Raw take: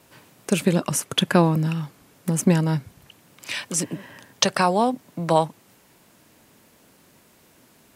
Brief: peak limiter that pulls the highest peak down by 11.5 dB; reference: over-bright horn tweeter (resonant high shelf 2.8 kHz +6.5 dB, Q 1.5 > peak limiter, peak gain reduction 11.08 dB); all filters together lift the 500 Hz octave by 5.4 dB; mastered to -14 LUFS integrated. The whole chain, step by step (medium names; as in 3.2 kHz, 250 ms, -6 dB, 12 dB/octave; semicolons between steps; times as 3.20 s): peaking EQ 500 Hz +7 dB; peak limiter -11.5 dBFS; resonant high shelf 2.8 kHz +6.5 dB, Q 1.5; trim +13.5 dB; peak limiter -2 dBFS